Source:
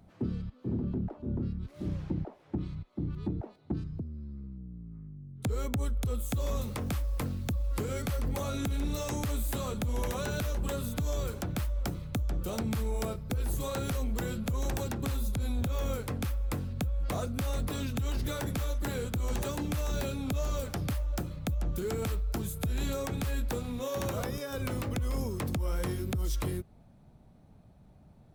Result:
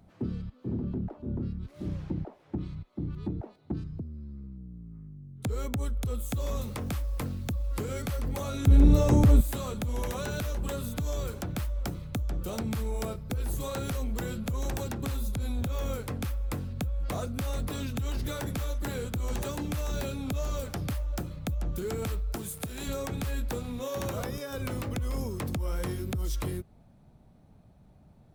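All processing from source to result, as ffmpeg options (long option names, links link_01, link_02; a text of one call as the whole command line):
ffmpeg -i in.wav -filter_complex "[0:a]asettb=1/sr,asplit=3[link_01][link_02][link_03];[link_01]atrim=end=8.674[link_04];[link_02]atrim=start=8.67:end=9.41,asetpts=PTS-STARTPTS,afade=type=in:duration=0.004:curve=qsin,afade=type=out:start_time=0.736:duration=0.004:curve=qsin,tiltshelf=frequency=890:gain=8,acontrast=72[link_05];[link_03]atrim=start=9.406[link_06];[link_04][link_05]acrossfade=duration=0.004:curve1=hsin:curve2=qsin[link_07];[link_07][link_06]acrossfade=duration=0.004:curve1=qsin:curve2=hsin,asettb=1/sr,asplit=3[link_08][link_09][link_10];[link_08]atrim=end=22.354[link_11];[link_09]atrim=start=22.35:end=22.88,asetpts=PTS-STARTPTS,afade=type=in:duration=0.004:curve=qsin,afade=type=out:start_time=0.526:duration=0.004:curve=qsin,highpass=frequency=210:poles=1,equalizer=frequency=9200:width_type=o:width=0.41:gain=6.5,acrusher=bits=9:dc=4:mix=0:aa=0.000001[link_12];[link_10]atrim=start=22.876[link_13];[link_11][link_12]acrossfade=duration=0.004:curve1=hsin:curve2=qsin[link_14];[link_14][link_13]acrossfade=duration=0.004:curve1=qsin:curve2=hsin" out.wav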